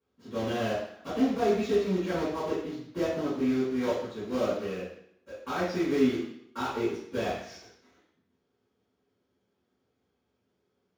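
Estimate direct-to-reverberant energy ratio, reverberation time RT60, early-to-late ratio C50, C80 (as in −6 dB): −17.5 dB, 0.70 s, 0.5 dB, 5.0 dB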